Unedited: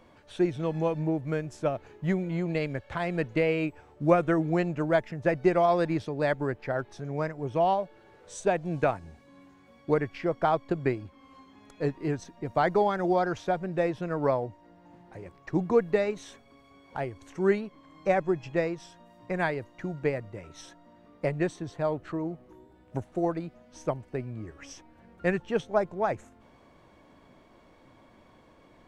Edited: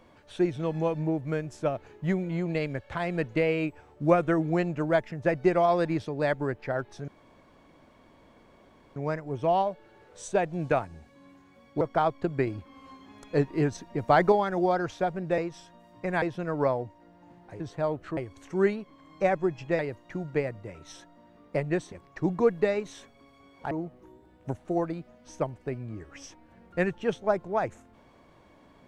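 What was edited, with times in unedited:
7.08 s: insert room tone 1.88 s
9.93–10.28 s: delete
10.94–12.79 s: gain +4 dB
15.23–17.02 s: swap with 21.61–22.18 s
18.64–19.48 s: move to 13.85 s

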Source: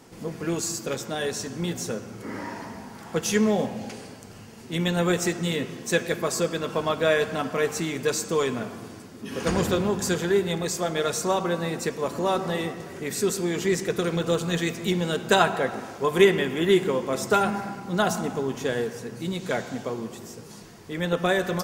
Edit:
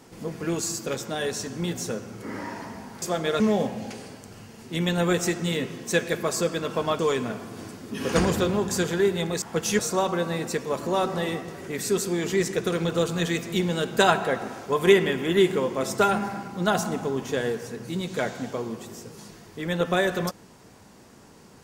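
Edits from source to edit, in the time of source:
3.02–3.39 s: swap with 10.73–11.11 s
6.98–8.30 s: delete
8.88–9.56 s: gain +3.5 dB

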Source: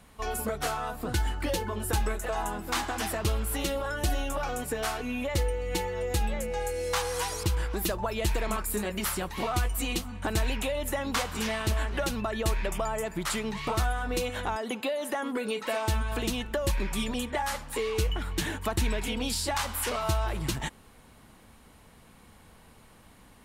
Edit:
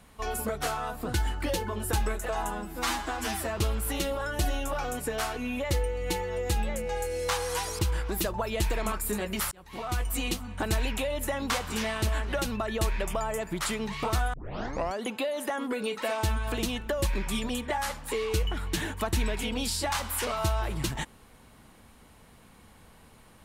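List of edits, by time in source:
2.51–3.22 s: stretch 1.5×
9.16–9.75 s: fade in
13.98 s: tape start 0.67 s

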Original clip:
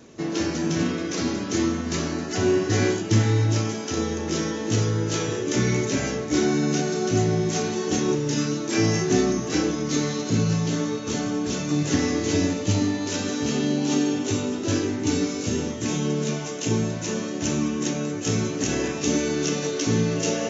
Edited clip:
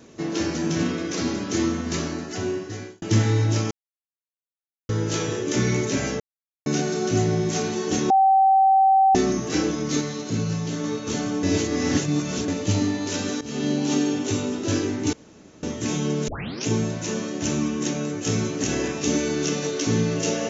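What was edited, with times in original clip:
1.93–3.02 s: fade out
3.71–4.89 s: mute
6.20–6.66 s: mute
8.10–9.15 s: bleep 772 Hz -13 dBFS
10.01–10.84 s: gain -3.5 dB
11.43–12.48 s: reverse
13.41–13.68 s: fade in, from -17.5 dB
15.13–15.63 s: room tone
16.28 s: tape start 0.38 s

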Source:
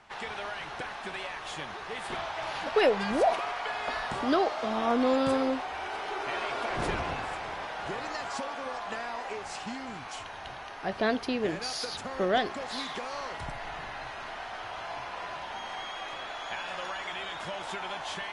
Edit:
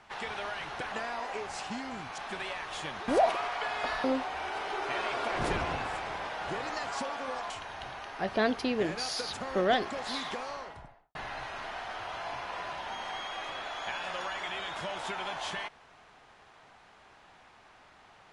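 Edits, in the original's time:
1.82–3.12 s: delete
4.08–5.42 s: delete
8.88–10.14 s: move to 0.92 s
12.91–13.79 s: studio fade out

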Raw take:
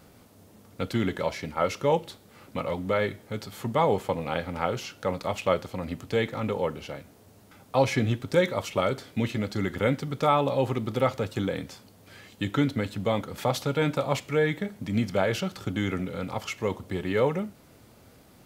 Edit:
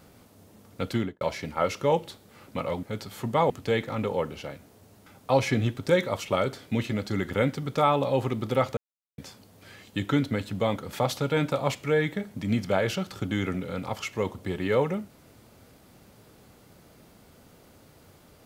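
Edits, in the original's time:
0.94–1.21 s: studio fade out
2.83–3.24 s: delete
3.91–5.95 s: delete
11.22–11.63 s: mute

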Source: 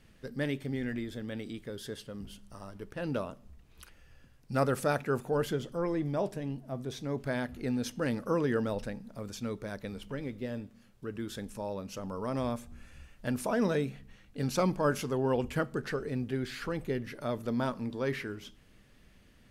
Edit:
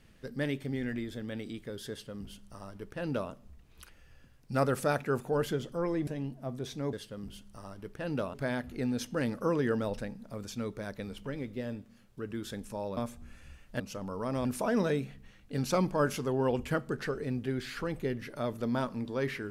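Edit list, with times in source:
1.90–3.31 s: copy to 7.19 s
6.07–6.33 s: delete
11.82–12.47 s: move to 13.30 s

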